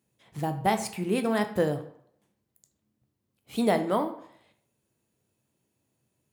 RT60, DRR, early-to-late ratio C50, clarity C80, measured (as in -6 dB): 0.65 s, 7.0 dB, 12.0 dB, 14.5 dB